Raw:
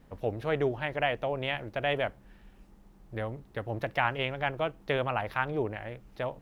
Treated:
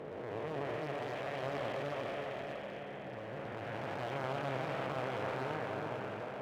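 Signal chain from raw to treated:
spectrum smeared in time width 897 ms
0:00.76–0:01.43: low-shelf EQ 480 Hz −7 dB
low-pass filter 1,700 Hz 6 dB per octave
low-shelf EQ 230 Hz −7 dB
delay that swaps between a low-pass and a high-pass 315 ms, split 960 Hz, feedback 71%, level −3 dB
convolution reverb RT60 0.35 s, pre-delay 25 ms, DRR 10.5 dB
asymmetric clip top −45 dBFS
high-pass filter 110 Hz 12 dB per octave
level +2 dB

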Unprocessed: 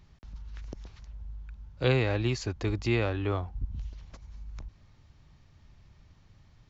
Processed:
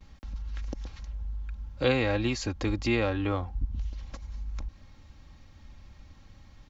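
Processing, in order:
noise gate with hold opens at −51 dBFS
comb filter 3.7 ms, depth 55%
in parallel at +0.5 dB: downward compressor, threshold −38 dBFS, peak gain reduction 16.5 dB
on the sum: level −1 dB

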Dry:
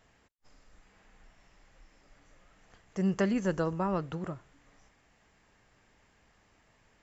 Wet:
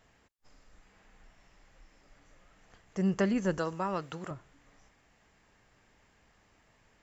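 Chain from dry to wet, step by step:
0:03.58–0:04.31: spectral tilt +2.5 dB per octave

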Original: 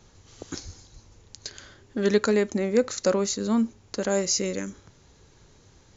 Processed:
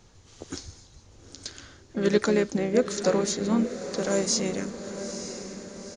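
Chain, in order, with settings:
pitch-shifted copies added −3 semitones −9 dB, +5 semitones −14 dB
feedback delay with all-pass diffusion 907 ms, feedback 52%, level −10 dB
level −1.5 dB

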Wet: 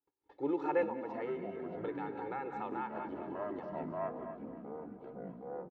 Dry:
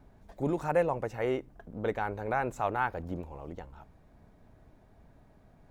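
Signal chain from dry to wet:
noise gate −52 dBFS, range −30 dB
loudspeaker in its box 260–4,100 Hz, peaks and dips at 290 Hz +9 dB, 660 Hz −4 dB, 960 Hz +3 dB
comb filter 2.3 ms, depth 87%
echo with a time of its own for lows and highs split 510 Hz, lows 337 ms, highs 198 ms, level −13 dB
reverb whose tail is shaped and stops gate 220 ms rising, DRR 9.5 dB
delay with pitch and tempo change per echo 257 ms, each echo −5 semitones, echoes 3, each echo −6 dB
0:00.83–0:03.30: downward compressor 3 to 1, threshold −30 dBFS, peak gain reduction 9 dB
level −7.5 dB

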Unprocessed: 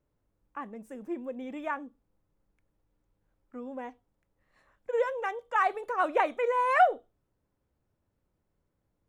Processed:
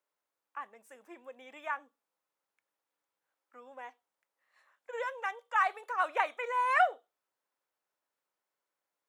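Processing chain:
high-pass filter 910 Hz 12 dB per octave

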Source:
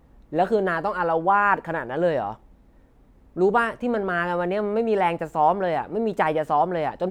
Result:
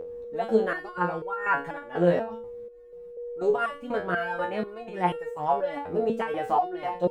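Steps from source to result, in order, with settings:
fake sidechain pumping 135 BPM, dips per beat 1, −16 dB, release 150 ms
steady tone 480 Hz −26 dBFS
step-sequenced resonator 4.1 Hz 87–460 Hz
level +8 dB

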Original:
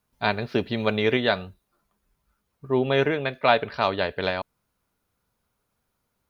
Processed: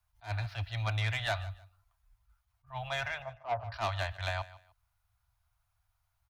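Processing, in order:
Chebyshev band-stop filter 110–680 Hz, order 4
low-shelf EQ 200 Hz +11.5 dB
0:03.22–0:03.72: Chebyshev low-pass filter 1,100 Hz, order 4
soft clipping −20.5 dBFS, distortion −11 dB
repeating echo 151 ms, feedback 25%, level −18 dB
level that may rise only so fast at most 260 dB per second
level −4.5 dB

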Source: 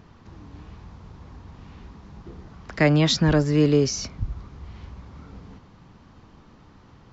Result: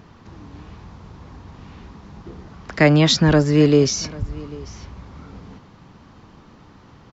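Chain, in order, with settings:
low-shelf EQ 70 Hz −6.5 dB
on a send: single-tap delay 793 ms −21 dB
on the sum: level +5 dB

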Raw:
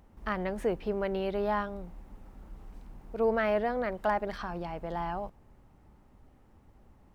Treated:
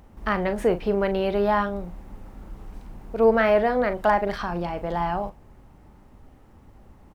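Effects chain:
double-tracking delay 40 ms −11 dB
level +8 dB

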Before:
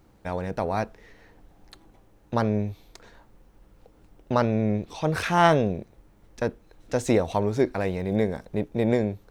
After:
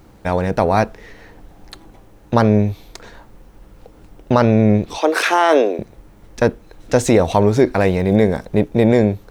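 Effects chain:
0:04.98–0:05.79: Butterworth high-pass 280 Hz 48 dB per octave
boost into a limiter +13 dB
level −1.5 dB

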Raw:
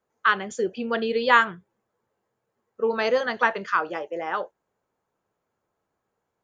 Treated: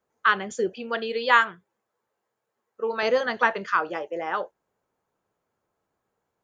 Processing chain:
0:00.74–0:03.03: low-shelf EQ 320 Hz −11.5 dB

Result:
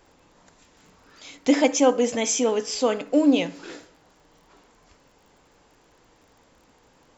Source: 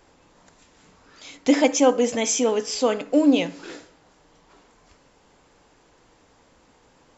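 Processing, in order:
surface crackle 33 per second −48 dBFS
level −1 dB

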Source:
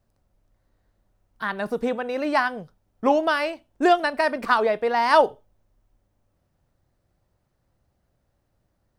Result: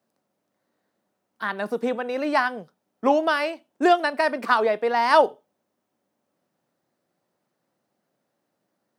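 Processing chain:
high-pass filter 190 Hz 24 dB per octave

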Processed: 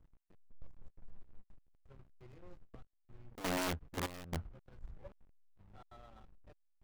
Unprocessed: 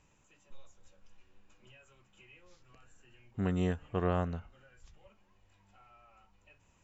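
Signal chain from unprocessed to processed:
adaptive Wiener filter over 15 samples
dynamic equaliser 970 Hz, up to −4 dB, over −50 dBFS, Q 0.74
downward compressor 3 to 1, threshold −44 dBFS, peak gain reduction 13 dB
wrap-around overflow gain 40 dB
gate pattern "xx.x...xxx.xxx" 170 BPM −12 dB
slack as between gear wheels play −58.5 dBFS
level +10 dB

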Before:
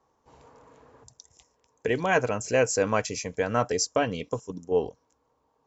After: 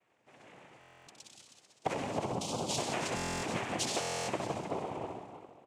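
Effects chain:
0:01.99–0:02.66: elliptic band-stop filter 440–5,600 Hz
flutter between parallel walls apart 11 metres, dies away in 0.99 s
downward compressor, threshold −27 dBFS, peak gain reduction 9.5 dB
harmonic and percussive parts rebalanced harmonic −11 dB
multi-tap delay 96/174/317/618 ms −7/−8.5/−8.5/−17 dB
cochlear-implant simulation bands 4
buffer that repeats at 0:00.79/0:03.15/0:04.00, samples 1,024, times 11

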